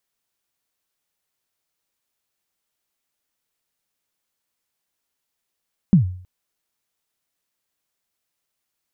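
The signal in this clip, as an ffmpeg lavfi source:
-f lavfi -i "aevalsrc='0.501*pow(10,-3*t/0.52)*sin(2*PI*(210*0.116/log(91/210)*(exp(log(91/210)*min(t,0.116)/0.116)-1)+91*max(t-0.116,0)))':d=0.32:s=44100"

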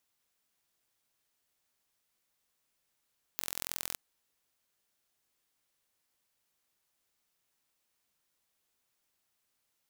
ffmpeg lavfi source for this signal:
-f lavfi -i "aevalsrc='0.447*eq(mod(n,1026),0)*(0.5+0.5*eq(mod(n,2052),0))':d=0.56:s=44100"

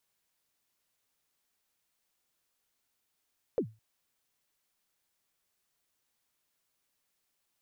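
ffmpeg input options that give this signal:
-f lavfi -i "aevalsrc='0.0794*pow(10,-3*t/0.27)*sin(2*PI*(540*0.08/log(110/540)*(exp(log(110/540)*min(t,0.08)/0.08)-1)+110*max(t-0.08,0)))':d=0.21:s=44100"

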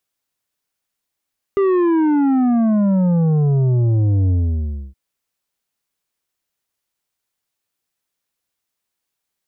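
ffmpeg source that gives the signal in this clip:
-f lavfi -i "aevalsrc='0.211*clip((3.37-t)/0.64,0,1)*tanh(2.51*sin(2*PI*400*3.37/log(65/400)*(exp(log(65/400)*t/3.37)-1)))/tanh(2.51)':d=3.37:s=44100"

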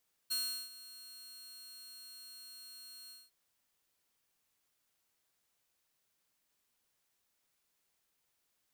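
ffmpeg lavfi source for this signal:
-f lavfi -i "aevalsrc='0.0335*(2*mod(4260*t,1)-1)':d=3.005:s=44100,afade=t=in:d=0.017,afade=t=out:st=0.017:d=0.371:silence=0.126,afade=t=out:st=2.8:d=0.205"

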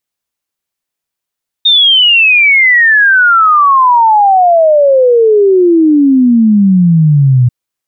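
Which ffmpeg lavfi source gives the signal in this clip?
-f lavfi -i "aevalsrc='0.668*clip(min(t,5.84-t)/0.01,0,1)*sin(2*PI*3700*5.84/log(120/3700)*(exp(log(120/3700)*t/5.84)-1))':d=5.84:s=44100"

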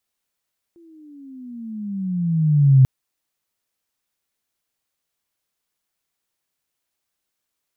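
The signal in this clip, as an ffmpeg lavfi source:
-f lavfi -i "aevalsrc='pow(10,(-7+39*(t/2.09-1))/20)*sin(2*PI*344*2.09/(-17*log(2)/12)*(exp(-17*log(2)/12*t/2.09)-1))':d=2.09:s=44100"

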